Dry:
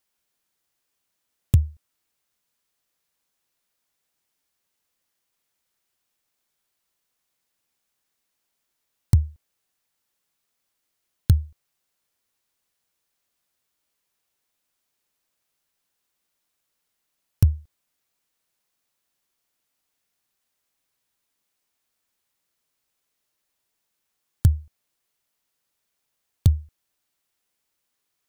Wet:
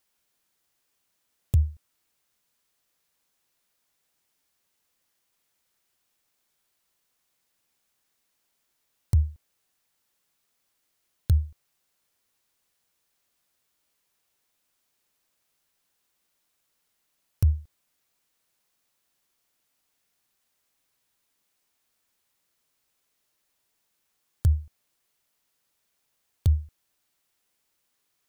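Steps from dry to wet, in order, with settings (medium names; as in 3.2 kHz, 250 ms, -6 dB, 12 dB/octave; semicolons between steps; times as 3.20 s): peak limiter -16 dBFS, peak gain reduction 11 dB; trim +2.5 dB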